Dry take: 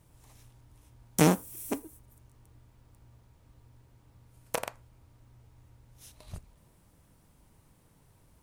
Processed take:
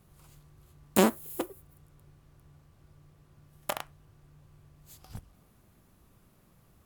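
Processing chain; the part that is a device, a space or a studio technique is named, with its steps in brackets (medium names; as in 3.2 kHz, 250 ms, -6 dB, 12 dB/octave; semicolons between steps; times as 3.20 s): nightcore (tape speed +23%)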